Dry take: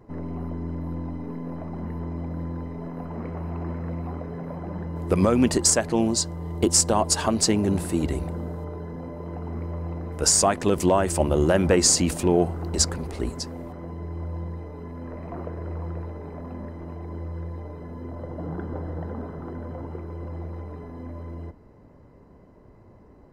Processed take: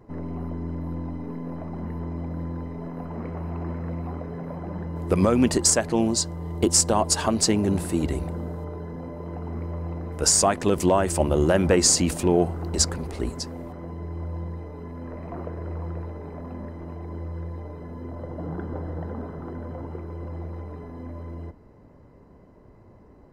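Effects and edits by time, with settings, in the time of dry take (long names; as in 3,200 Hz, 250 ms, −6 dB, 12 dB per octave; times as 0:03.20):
nothing changes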